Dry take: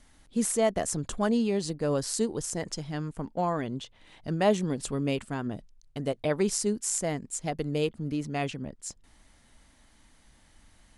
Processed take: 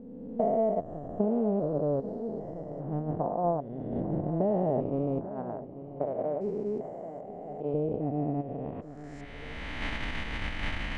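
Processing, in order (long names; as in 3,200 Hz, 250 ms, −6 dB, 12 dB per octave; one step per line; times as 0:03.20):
spectrum averaged block by block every 400 ms
camcorder AGC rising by 25 dB per second
noise gate −31 dBFS, range −12 dB
0:05.26–0:07.74: low-shelf EQ 290 Hz −12 dB
downward compressor 4 to 1, threshold −37 dBFS, peak gain reduction 11 dB
low-pass filter sweep 690 Hz → 2,500 Hz, 0:08.56–0:09.29
feedback echo with a low-pass in the loop 841 ms, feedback 52%, low-pass 2,400 Hz, level −14 dB
level +9 dB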